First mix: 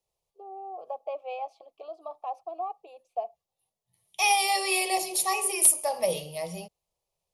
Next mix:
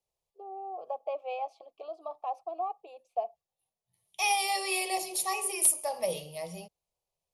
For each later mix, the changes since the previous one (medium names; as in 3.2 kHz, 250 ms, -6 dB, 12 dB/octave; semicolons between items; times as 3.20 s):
second voice -4.5 dB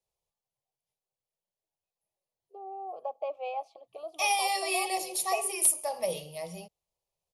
first voice: entry +2.15 s